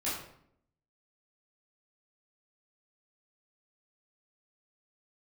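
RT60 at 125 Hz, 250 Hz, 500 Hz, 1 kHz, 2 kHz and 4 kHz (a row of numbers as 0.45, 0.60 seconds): 0.85, 0.90, 0.75, 0.65, 0.55, 0.45 seconds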